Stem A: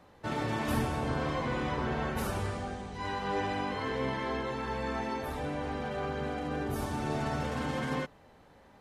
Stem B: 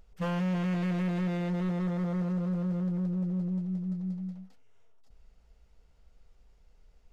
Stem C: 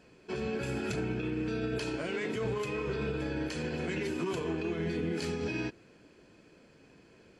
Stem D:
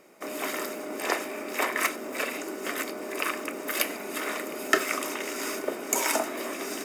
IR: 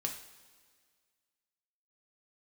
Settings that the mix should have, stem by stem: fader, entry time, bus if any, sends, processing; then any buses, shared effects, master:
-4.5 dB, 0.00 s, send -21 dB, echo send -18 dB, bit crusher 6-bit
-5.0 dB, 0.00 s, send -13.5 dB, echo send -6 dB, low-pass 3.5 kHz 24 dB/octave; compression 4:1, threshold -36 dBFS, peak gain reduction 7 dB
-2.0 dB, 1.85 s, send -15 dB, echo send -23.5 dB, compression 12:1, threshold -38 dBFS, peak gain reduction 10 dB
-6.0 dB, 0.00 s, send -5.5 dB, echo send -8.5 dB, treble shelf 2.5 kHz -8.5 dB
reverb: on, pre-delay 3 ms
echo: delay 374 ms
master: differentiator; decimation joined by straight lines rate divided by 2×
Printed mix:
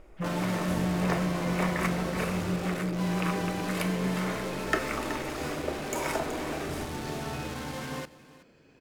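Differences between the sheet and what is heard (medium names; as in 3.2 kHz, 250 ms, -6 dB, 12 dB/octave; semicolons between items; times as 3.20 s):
stem B -5.0 dB -> +2.5 dB; master: missing differentiator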